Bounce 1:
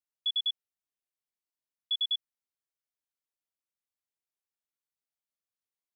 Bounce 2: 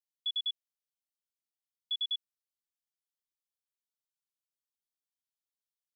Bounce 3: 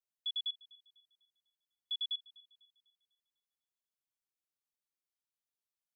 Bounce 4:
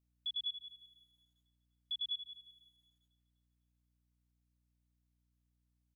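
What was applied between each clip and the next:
Chebyshev high-pass 3000 Hz, order 5; gain -3 dB
thin delay 0.249 s, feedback 40%, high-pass 3200 Hz, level -19.5 dB; gain -3.5 dB
hum 60 Hz, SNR 30 dB; echo 82 ms -18 dB; lo-fi delay 0.177 s, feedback 35%, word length 12-bit, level -12 dB; gain -2 dB

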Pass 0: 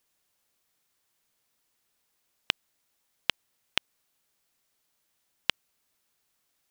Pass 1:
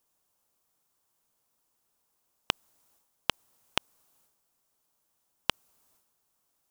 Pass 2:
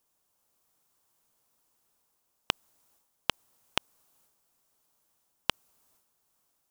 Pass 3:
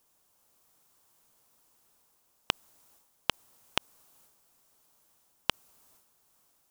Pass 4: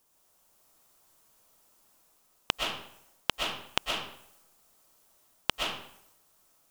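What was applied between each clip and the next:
ten-band EQ 1000 Hz +4 dB, 2000 Hz -8 dB, 4000 Hz -5 dB; transient shaper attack +4 dB, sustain +8 dB
AGC gain up to 3 dB
maximiser +7 dB; gain -1 dB
digital reverb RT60 0.67 s, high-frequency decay 0.8×, pre-delay 85 ms, DRR -1 dB

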